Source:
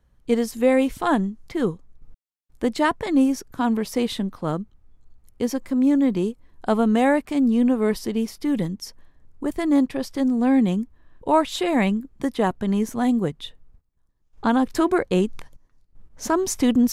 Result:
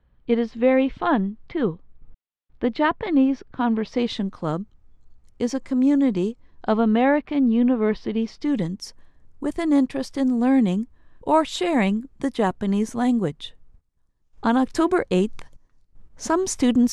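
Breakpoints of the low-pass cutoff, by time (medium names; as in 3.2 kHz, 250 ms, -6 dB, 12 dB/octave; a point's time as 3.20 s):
low-pass 24 dB/octave
3.79 s 3.7 kHz
4.31 s 8 kHz
6.24 s 8 kHz
6.98 s 3.8 kHz
8.09 s 3.8 kHz
8.77 s 9.9 kHz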